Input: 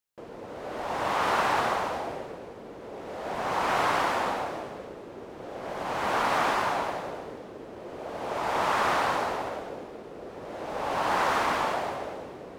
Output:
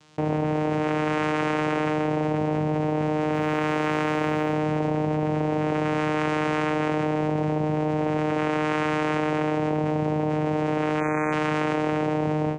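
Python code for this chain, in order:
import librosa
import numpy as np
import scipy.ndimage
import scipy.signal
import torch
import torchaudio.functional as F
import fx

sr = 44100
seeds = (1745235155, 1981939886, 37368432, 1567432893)

y = fx.fade_out_tail(x, sr, length_s=1.3)
y = fx.vocoder(y, sr, bands=4, carrier='saw', carrier_hz=153.0)
y = fx.quant_float(y, sr, bits=6, at=(3.34, 4.53))
y = fx.spec_erase(y, sr, start_s=11.0, length_s=0.33, low_hz=2600.0, high_hz=5900.0)
y = fx.env_flatten(y, sr, amount_pct=100)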